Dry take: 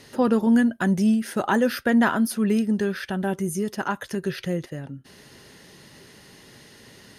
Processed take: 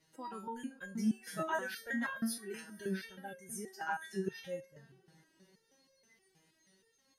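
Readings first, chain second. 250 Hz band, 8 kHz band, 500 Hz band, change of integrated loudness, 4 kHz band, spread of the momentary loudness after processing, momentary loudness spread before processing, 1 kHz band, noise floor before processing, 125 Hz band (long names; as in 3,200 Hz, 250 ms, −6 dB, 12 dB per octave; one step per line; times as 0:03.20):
−19.0 dB, −10.0 dB, −16.5 dB, −16.5 dB, −13.0 dB, 10 LU, 10 LU, −13.0 dB, −50 dBFS, −18.0 dB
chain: feedback delay with all-pass diffusion 522 ms, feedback 50%, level −14 dB
noise reduction from a noise print of the clip's start 13 dB
step-sequenced resonator 6.3 Hz 160–540 Hz
level +2 dB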